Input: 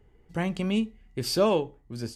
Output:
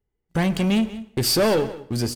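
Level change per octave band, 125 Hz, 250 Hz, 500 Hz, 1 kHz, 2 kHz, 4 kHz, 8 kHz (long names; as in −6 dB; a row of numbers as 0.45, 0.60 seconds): +8.0, +6.5, +4.0, +3.5, +8.0, +8.5, +11.0 decibels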